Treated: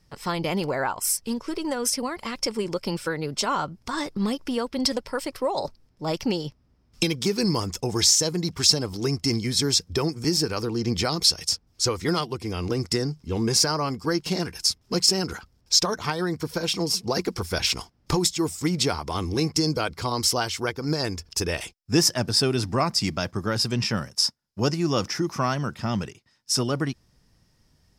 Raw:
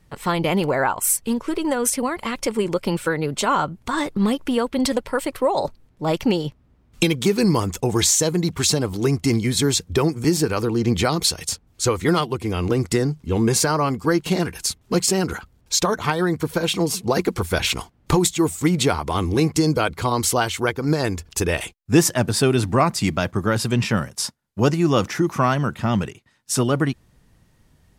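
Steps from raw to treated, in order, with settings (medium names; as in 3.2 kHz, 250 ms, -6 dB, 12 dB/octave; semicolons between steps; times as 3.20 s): peaking EQ 5.2 kHz +15 dB 0.36 oct; trim -6 dB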